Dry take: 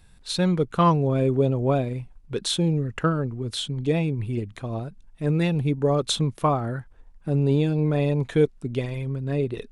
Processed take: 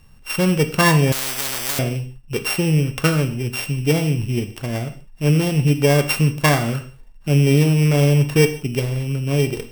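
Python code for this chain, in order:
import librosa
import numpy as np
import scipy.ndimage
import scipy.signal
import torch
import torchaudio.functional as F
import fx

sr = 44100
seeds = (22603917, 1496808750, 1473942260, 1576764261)

y = np.r_[np.sort(x[:len(x) // 16 * 16].reshape(-1, 16), axis=1).ravel(), x[len(x) // 16 * 16:]]
y = fx.rev_gated(y, sr, seeds[0], gate_ms=200, shape='falling', drr_db=7.0)
y = fx.spectral_comp(y, sr, ratio=10.0, at=(1.12, 1.79))
y = y * librosa.db_to_amplitude(4.5)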